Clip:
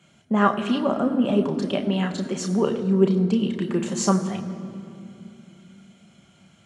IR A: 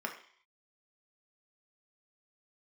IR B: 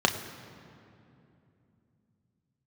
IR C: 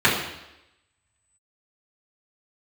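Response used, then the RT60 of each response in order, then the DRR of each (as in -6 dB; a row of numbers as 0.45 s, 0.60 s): B; 0.55 s, 2.8 s, 0.90 s; 1.5 dB, 4.0 dB, -9.5 dB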